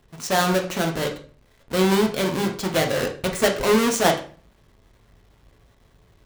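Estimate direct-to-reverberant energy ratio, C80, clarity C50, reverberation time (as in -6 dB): 2.0 dB, 15.0 dB, 9.5 dB, 0.45 s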